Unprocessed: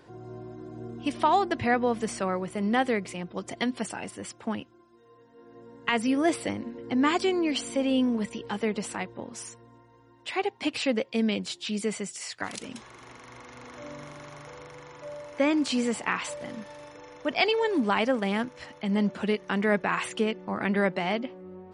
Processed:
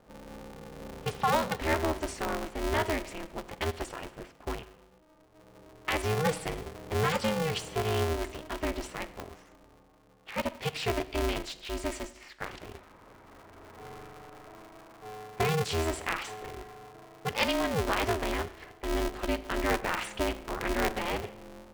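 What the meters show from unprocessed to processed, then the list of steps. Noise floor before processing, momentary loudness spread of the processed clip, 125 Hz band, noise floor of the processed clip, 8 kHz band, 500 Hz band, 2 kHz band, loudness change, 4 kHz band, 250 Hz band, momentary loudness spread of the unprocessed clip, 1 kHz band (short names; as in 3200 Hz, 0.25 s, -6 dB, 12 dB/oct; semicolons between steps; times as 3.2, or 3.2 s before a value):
-57 dBFS, 19 LU, +3.0 dB, -59 dBFS, -2.0 dB, -3.0 dB, -3.0 dB, -4.0 dB, -2.5 dB, -9.0 dB, 19 LU, -3.0 dB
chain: low-pass opened by the level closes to 900 Hz, open at -24.5 dBFS; Schroeder reverb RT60 0.89 s, combs from 29 ms, DRR 13.5 dB; polarity switched at an audio rate 160 Hz; gain -4 dB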